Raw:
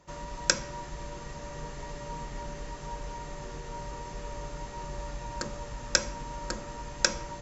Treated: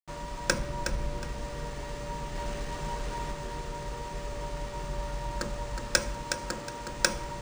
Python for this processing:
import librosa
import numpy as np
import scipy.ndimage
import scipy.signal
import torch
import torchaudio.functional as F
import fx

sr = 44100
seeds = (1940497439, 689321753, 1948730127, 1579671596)

y = fx.tilt_eq(x, sr, slope=-1.5, at=(0.49, 1.24))
y = fx.quant_companded(y, sr, bits=4, at=(2.35, 3.32))
y = fx.highpass(y, sr, hz=140.0, slope=6, at=(6.21, 6.89))
y = fx.quant_dither(y, sr, seeds[0], bits=8, dither='none')
y = fx.echo_feedback(y, sr, ms=366, feedback_pct=26, wet_db=-7.5)
y = np.interp(np.arange(len(y)), np.arange(len(y))[::3], y[::3])
y = y * librosa.db_to_amplitude(1.5)